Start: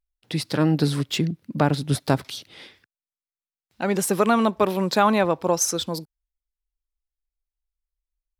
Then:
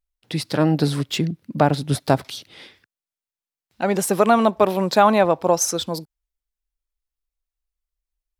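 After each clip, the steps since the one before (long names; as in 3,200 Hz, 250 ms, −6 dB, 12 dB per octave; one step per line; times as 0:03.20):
dynamic equaliser 690 Hz, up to +6 dB, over −35 dBFS, Q 1.9
level +1 dB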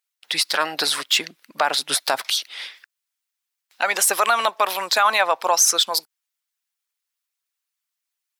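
high-pass filter 1,200 Hz 12 dB per octave
harmonic and percussive parts rebalanced percussive +8 dB
brickwall limiter −12 dBFS, peak gain reduction 9 dB
level +5 dB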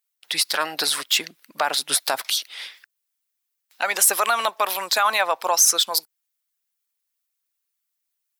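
high-shelf EQ 9,600 Hz +9.5 dB
level −2.5 dB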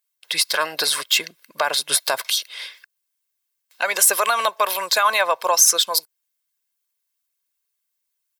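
comb filter 1.9 ms, depth 46%
level +1 dB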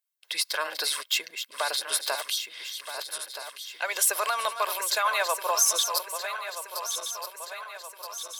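feedback delay that plays each chunk backwards 637 ms, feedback 72%, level −8.5 dB
high-pass filter 390 Hz 12 dB per octave
level −8 dB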